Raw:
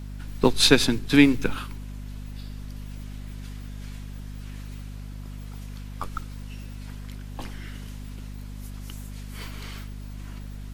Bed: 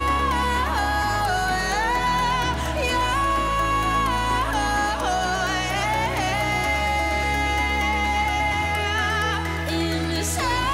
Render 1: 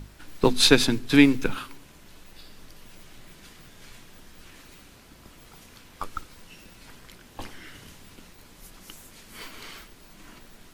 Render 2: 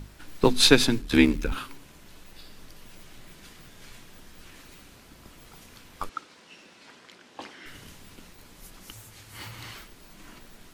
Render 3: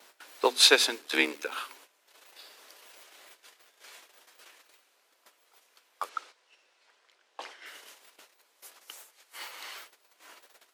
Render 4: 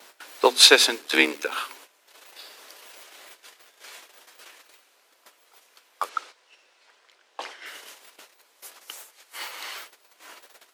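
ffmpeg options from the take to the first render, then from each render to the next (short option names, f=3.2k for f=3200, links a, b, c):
-af "bandreject=f=50:t=h:w=6,bandreject=f=100:t=h:w=6,bandreject=f=150:t=h:w=6,bandreject=f=200:t=h:w=6,bandreject=f=250:t=h:w=6"
-filter_complex "[0:a]asettb=1/sr,asplit=3[a][b][c];[a]atrim=end=1.014[d];[b]atrim=start=1.01:end=1.52,asetpts=PTS-STARTPTS,afade=t=in:d=0.004:c=qsin,afade=t=out:st=0.506:d=0.004:c=qsin,aeval=exprs='val(0)*sin(2*PI*37*n/s)':c=same[e];[c]atrim=start=1.516[f];[d][e]acrossfade=d=0.004:c1=hsin:c2=qsin[g];[g][f]acrossfade=d=0.004:c1=qsin:c2=hsin,asettb=1/sr,asplit=3[h][i][j];[h]atrim=end=6.094[k];[i]atrim=start=6.09:end=7.66,asetpts=PTS-STARTPTS,afade=t=in:d=0.004:c=qsin,afade=t=out:st=1.566:d=0.004:c=qsin,highpass=260,lowpass=6.3k[l];[j]atrim=start=7.656[m];[k][l]acrossfade=d=0.004:c1=hsin:c2=qsin[n];[n][m]acrossfade=d=0.004:c1=qsin:c2=hsin,asettb=1/sr,asplit=3[o][p][q];[o]atrim=end=8.914[r];[p]atrim=start=8.91:end=9.75,asetpts=PTS-STARTPTS,afade=t=in:d=0.004:c=qsin,afade=t=out:st=0.836:d=0.004:c=qsin,afreqshift=-120[s];[q]atrim=start=9.746[t];[r][s]acrossfade=d=0.004:c1=hsin:c2=qsin[u];[u][t]acrossfade=d=0.004:c1=qsin:c2=hsin"
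-af "agate=range=-14dB:threshold=-46dB:ratio=16:detection=peak,highpass=f=460:w=0.5412,highpass=f=460:w=1.3066"
-af "volume=6.5dB,alimiter=limit=-1dB:level=0:latency=1"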